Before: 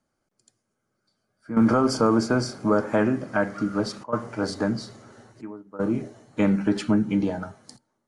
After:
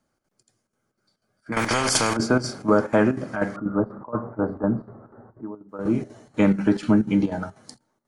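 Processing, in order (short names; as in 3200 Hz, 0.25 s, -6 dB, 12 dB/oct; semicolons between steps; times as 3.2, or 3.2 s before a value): 3.56–5.69 inverse Chebyshev low-pass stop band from 2600 Hz, stop band 40 dB; chopper 4.1 Hz, depth 65%, duty 75%; 1.52–2.17 spectral compressor 4:1; gain +3 dB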